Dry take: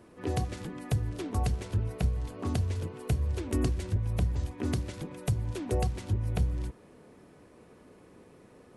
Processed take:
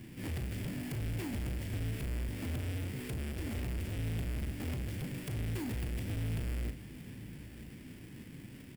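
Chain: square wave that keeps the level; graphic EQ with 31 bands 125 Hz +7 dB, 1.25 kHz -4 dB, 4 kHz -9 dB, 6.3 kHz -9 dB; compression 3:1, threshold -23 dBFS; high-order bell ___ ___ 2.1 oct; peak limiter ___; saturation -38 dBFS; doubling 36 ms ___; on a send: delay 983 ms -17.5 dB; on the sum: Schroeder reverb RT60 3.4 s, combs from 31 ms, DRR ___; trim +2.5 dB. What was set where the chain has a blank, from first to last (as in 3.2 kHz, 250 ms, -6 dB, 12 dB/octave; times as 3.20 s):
740 Hz, -13.5 dB, -26.5 dBFS, -8 dB, 17 dB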